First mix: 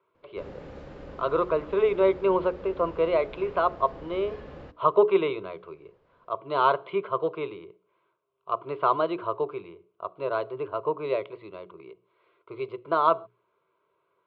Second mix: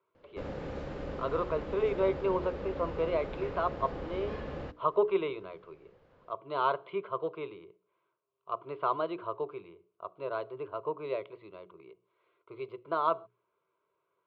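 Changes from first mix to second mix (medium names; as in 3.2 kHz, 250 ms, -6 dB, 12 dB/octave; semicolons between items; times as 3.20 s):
speech -7.0 dB; background +4.0 dB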